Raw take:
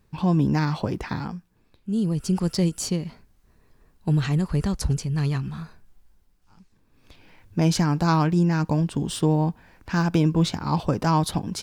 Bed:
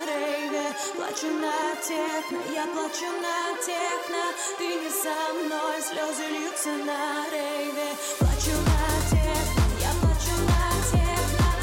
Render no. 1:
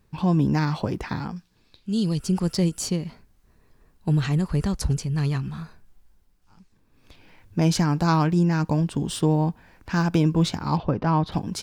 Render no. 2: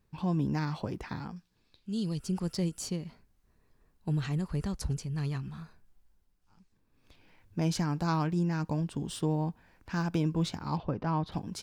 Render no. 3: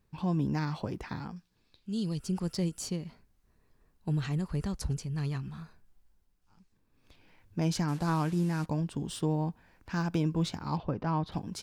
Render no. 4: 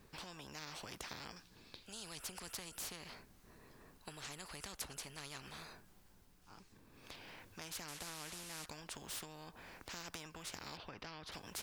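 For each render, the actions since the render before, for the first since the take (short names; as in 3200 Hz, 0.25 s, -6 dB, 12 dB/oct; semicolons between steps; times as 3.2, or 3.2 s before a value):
1.36–2.18 bell 4300 Hz +13.5 dB 1.5 oct; 10.77–11.32 air absorption 290 m
gain -9 dB
7.88–8.66 delta modulation 64 kbps, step -43.5 dBFS
compressor, threshold -34 dBFS, peak gain reduction 10.5 dB; spectral compressor 4:1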